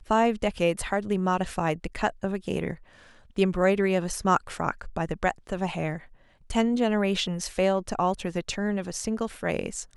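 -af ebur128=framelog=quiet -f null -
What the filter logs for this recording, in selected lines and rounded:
Integrated loudness:
  I:         -27.3 LUFS
  Threshold: -37.6 LUFS
Loudness range:
  LRA:         1.2 LU
  Threshold: -47.6 LUFS
  LRA low:   -28.4 LUFS
  LRA high:  -27.1 LUFS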